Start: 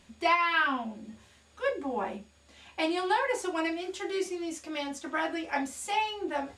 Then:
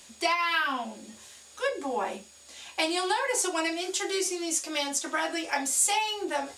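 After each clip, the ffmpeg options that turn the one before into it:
-filter_complex "[0:a]acrossover=split=190[a][b];[b]acompressor=threshold=-29dB:ratio=4[c];[a][c]amix=inputs=2:normalize=0,bass=f=250:g=-12,treble=f=4k:g=13,volume=4.5dB"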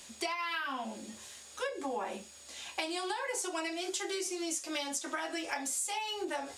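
-af "acompressor=threshold=-33dB:ratio=6"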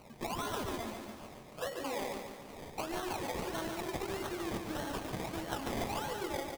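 -filter_complex "[0:a]acrusher=samples=25:mix=1:aa=0.000001:lfo=1:lforange=15:lforate=1.6,asplit=2[a][b];[b]aecho=0:1:143|286|429|572|715|858|1001:0.501|0.266|0.141|0.0746|0.0395|0.021|0.0111[c];[a][c]amix=inputs=2:normalize=0,volume=-2.5dB"

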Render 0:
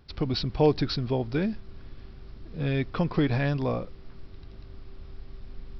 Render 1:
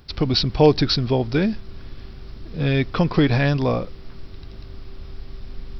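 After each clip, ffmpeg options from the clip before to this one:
-af "highshelf=f=4.6k:g=9,volume=7dB"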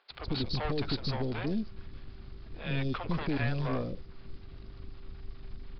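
-filter_complex "[0:a]aeval=exprs='(tanh(12.6*val(0)+0.65)-tanh(0.65))/12.6':c=same,aresample=11025,aresample=44100,acrossover=split=520|4300[a][b][c];[a]adelay=100[d];[c]adelay=150[e];[d][b][e]amix=inputs=3:normalize=0,volume=-5dB"

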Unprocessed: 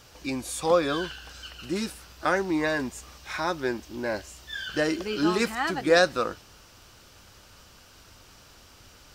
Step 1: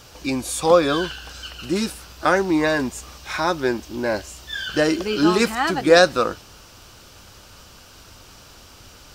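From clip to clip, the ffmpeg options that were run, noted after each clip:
-af "equalizer=f=1.9k:t=o:w=0.47:g=-3,volume=7dB"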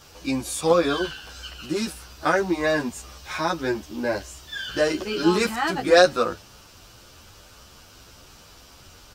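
-filter_complex "[0:a]asplit=2[a][b];[b]adelay=10.6,afreqshift=1.8[c];[a][c]amix=inputs=2:normalize=1"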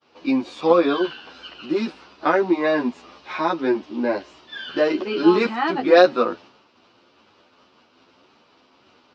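-af "agate=range=-33dB:threshold=-42dB:ratio=3:detection=peak,highpass=240,equalizer=f=250:t=q:w=4:g=7,equalizer=f=360:t=q:w=4:g=4,equalizer=f=980:t=q:w=4:g=3,equalizer=f=1.6k:t=q:w=4:g=-4,equalizer=f=3.3k:t=q:w=4:g=-3,lowpass=f=3.9k:w=0.5412,lowpass=f=3.9k:w=1.3066,volume=2dB"

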